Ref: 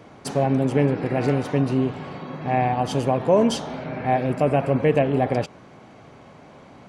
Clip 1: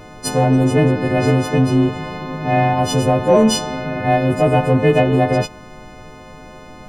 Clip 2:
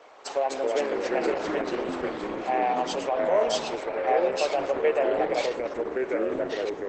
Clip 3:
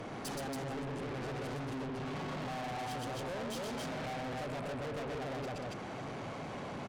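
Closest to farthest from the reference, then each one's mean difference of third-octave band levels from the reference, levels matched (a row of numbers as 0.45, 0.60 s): 1, 2, 3; 3.0, 8.0, 12.0 dB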